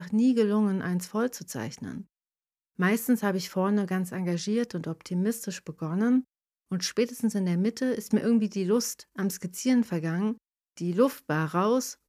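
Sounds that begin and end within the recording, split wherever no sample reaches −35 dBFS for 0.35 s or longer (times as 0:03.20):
0:02.79–0:06.21
0:06.72–0:10.33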